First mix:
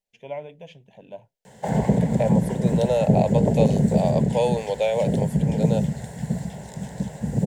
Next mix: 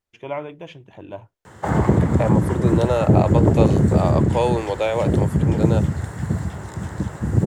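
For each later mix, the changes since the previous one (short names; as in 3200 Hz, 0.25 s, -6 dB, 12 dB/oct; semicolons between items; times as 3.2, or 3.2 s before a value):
first voice +3.5 dB; master: remove fixed phaser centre 330 Hz, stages 6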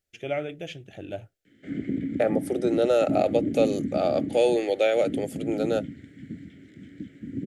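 first voice: add high shelf 4100 Hz +10.5 dB; background: add vowel filter i; master: add Butterworth band-stop 1000 Hz, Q 1.7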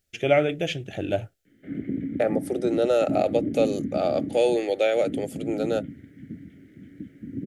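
first voice +9.5 dB; background: add air absorption 380 m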